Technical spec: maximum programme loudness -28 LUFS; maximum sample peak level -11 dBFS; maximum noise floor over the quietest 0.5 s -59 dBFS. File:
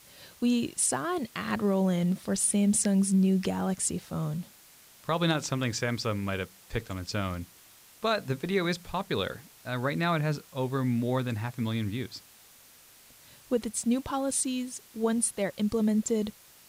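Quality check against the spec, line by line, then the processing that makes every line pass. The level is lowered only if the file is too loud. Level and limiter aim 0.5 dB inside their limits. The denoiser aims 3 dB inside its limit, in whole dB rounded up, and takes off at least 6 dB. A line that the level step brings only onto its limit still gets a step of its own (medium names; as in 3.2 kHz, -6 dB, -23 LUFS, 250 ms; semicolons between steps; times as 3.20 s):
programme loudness -29.0 LUFS: pass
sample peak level -14.0 dBFS: pass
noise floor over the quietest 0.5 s -56 dBFS: fail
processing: noise reduction 6 dB, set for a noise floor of -56 dBFS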